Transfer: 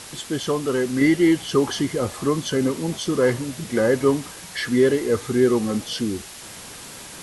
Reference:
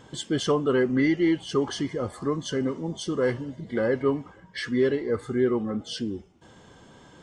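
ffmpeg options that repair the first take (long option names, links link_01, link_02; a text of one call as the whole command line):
ffmpeg -i in.wav -af "afwtdn=0.014,asetnsamples=nb_out_samples=441:pad=0,asendcmd='1.01 volume volume -5.5dB',volume=0dB" out.wav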